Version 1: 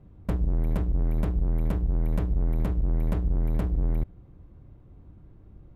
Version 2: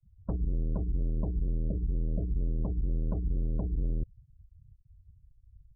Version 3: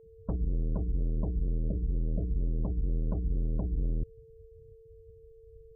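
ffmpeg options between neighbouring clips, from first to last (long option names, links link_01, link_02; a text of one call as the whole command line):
ffmpeg -i in.wav -af "afftfilt=real='re*gte(hypot(re,im),0.0282)':imag='im*gte(hypot(re,im),0.0282)':win_size=1024:overlap=0.75,afftfilt=real='re*lt(b*sr/1024,610*pow(2100/610,0.5+0.5*sin(2*PI*0.39*pts/sr)))':imag='im*lt(b*sr/1024,610*pow(2100/610,0.5+0.5*sin(2*PI*0.39*pts/sr)))':win_size=1024:overlap=0.75,volume=-5dB" out.wav
ffmpeg -i in.wav -af "aeval=exprs='val(0)+0.00224*sin(2*PI*450*n/s)':channel_layout=same" out.wav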